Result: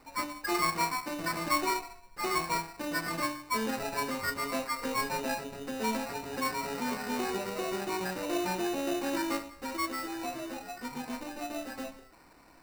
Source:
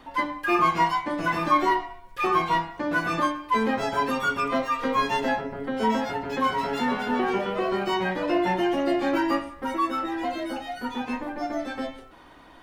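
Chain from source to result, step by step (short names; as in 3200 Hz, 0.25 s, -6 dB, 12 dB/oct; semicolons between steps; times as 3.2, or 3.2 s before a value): sample-rate reducer 3300 Hz, jitter 0%; gain -8 dB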